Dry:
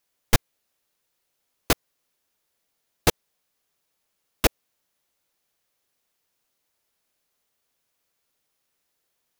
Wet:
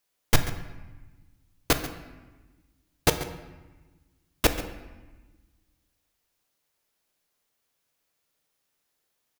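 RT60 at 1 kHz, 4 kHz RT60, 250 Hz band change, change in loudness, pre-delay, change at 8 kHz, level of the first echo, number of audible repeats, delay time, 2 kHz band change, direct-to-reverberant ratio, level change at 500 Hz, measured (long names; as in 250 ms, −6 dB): 1.2 s, 0.85 s, −0.5 dB, −2.0 dB, 7 ms, −1.0 dB, −15.0 dB, 1, 137 ms, −0.5 dB, 7.5 dB, −1.0 dB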